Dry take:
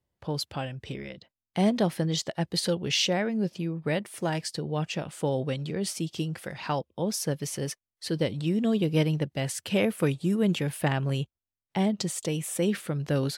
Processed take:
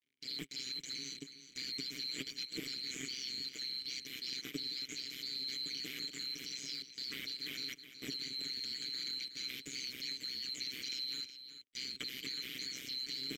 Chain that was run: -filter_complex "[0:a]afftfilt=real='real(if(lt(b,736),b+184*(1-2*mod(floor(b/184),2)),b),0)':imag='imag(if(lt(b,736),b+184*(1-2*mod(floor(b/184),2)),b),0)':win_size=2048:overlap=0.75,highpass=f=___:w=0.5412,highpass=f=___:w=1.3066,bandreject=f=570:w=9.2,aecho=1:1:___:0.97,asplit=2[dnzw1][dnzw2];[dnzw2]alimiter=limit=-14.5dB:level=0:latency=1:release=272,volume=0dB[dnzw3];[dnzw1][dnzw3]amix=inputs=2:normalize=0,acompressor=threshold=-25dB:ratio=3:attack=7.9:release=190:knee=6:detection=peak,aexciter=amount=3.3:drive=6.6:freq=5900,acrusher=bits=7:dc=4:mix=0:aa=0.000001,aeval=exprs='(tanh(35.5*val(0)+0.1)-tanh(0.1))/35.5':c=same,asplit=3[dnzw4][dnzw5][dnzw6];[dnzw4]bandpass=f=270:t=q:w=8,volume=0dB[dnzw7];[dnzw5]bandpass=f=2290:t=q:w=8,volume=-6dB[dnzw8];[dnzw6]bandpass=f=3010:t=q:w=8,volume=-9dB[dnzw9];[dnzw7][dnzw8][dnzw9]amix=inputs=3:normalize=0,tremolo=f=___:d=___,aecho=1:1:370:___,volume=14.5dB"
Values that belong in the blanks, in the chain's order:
140, 140, 6.6, 130, 0.889, 0.266